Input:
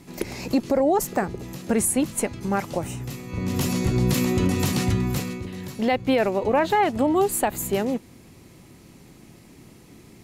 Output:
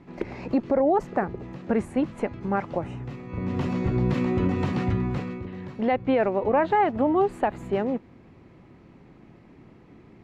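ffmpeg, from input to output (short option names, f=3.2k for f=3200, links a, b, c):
-af "lowpass=1.8k,lowshelf=f=340:g=-3"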